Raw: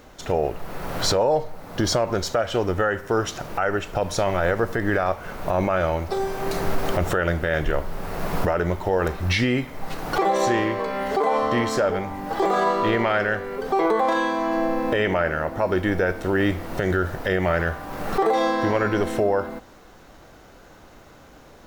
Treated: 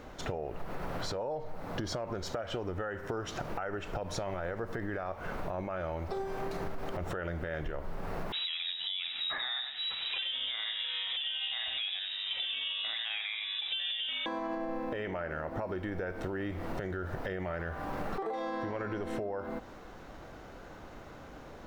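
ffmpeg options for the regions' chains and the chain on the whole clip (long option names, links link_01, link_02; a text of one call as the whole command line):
ffmpeg -i in.wav -filter_complex "[0:a]asettb=1/sr,asplit=3[link_01][link_02][link_03];[link_01]atrim=end=8.324[link_04];[link_02]atrim=start=8.32:end=14.26,asetpts=PTS-STARTPTS,afade=type=in:duration=0.004:curve=qsin,afade=type=out:start_time=5.936:duration=0.004:curve=qsin,lowpass=frequency=3300:width_type=q:width=0.5098,lowpass=frequency=3300:width_type=q:width=0.6013,lowpass=frequency=3300:width_type=q:width=0.9,lowpass=frequency=3300:width_type=q:width=2.563,afreqshift=-3900,aecho=1:1:91:0.316,atrim=end_sample=261954[link_05];[link_03]atrim=start=14.256[link_06];[link_04][link_05]acrossfade=duration=0.004:curve1=hsin:curve2=qsin[link_07];[link_07][link_06]acrossfade=duration=0.004:curve1=qsin:curve2=hsin,highshelf=frequency=4700:gain=-11,alimiter=limit=-18dB:level=0:latency=1:release=120,acompressor=threshold=-33dB:ratio=6" out.wav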